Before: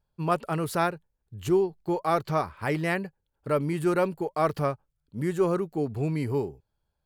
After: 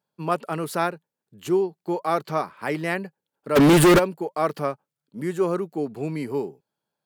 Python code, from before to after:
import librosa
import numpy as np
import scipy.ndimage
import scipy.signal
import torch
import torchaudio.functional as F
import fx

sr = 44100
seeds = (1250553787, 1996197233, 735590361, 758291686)

y = scipy.signal.sosfilt(scipy.signal.butter(4, 170.0, 'highpass', fs=sr, output='sos'), x)
y = fx.fuzz(y, sr, gain_db=37.0, gate_db=-45.0, at=(3.55, 3.98), fade=0.02)
y = F.gain(torch.from_numpy(y), 1.5).numpy()